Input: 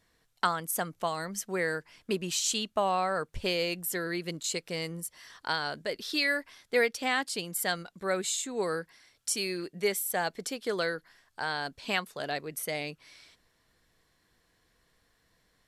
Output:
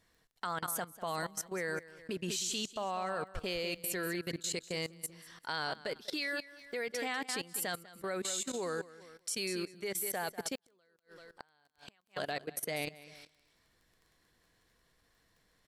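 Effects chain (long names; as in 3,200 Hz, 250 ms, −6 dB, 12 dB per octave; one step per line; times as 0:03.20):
repeating echo 194 ms, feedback 29%, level −11 dB
output level in coarse steps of 18 dB
0:10.55–0:12.17: gate with flip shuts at −34 dBFS, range −35 dB
surface crackle 15 per second −54 dBFS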